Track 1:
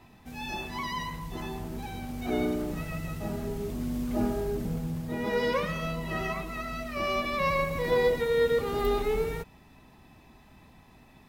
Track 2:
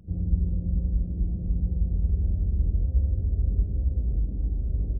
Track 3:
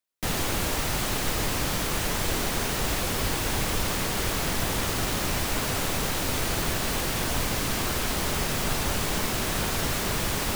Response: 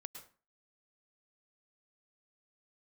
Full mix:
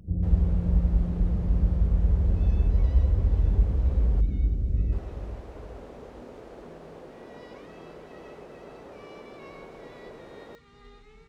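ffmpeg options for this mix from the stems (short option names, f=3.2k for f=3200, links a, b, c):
-filter_complex "[0:a]lowpass=f=7.3k:w=0.5412,lowpass=f=7.3k:w=1.3066,equalizer=f=540:t=o:w=1.5:g=-13,adelay=2000,volume=-19.5dB,asplit=2[a][b];[b]volume=-10.5dB[c];[1:a]volume=2dB,asplit=2[d][e];[e]volume=-11.5dB[f];[2:a]bandpass=f=460:t=q:w=1.9:csg=0,volume=-8dB,asplit=3[g][h][i];[g]atrim=end=4.21,asetpts=PTS-STARTPTS,afade=t=out:st=4.206:d=0.004:c=hsin[j];[h]atrim=start=4.21:end=4.92,asetpts=PTS-STARTPTS,volume=0[k];[i]atrim=start=4.92,asetpts=PTS-STARTPTS,afade=t=in:d=0.004:c=hsin[l];[j][k][l]concat=n=3:v=0:a=1[m];[c][f]amix=inputs=2:normalize=0,aecho=0:1:427|854|1281|1708|2135|2562:1|0.41|0.168|0.0689|0.0283|0.0116[n];[a][d][m][n]amix=inputs=4:normalize=0"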